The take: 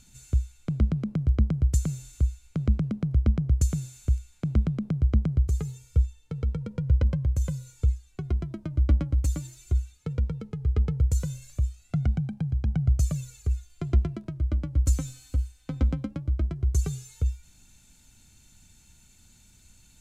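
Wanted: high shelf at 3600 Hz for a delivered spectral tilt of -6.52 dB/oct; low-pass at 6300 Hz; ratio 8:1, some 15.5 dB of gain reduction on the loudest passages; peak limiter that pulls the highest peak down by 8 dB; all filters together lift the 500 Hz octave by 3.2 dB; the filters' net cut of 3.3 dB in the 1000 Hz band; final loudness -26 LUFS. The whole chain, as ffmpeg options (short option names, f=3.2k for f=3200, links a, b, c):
-af "lowpass=6.3k,equalizer=f=500:t=o:g=5.5,equalizer=f=1k:t=o:g=-8,highshelf=f=3.6k:g=6,acompressor=threshold=-33dB:ratio=8,volume=15.5dB,alimiter=limit=-15dB:level=0:latency=1"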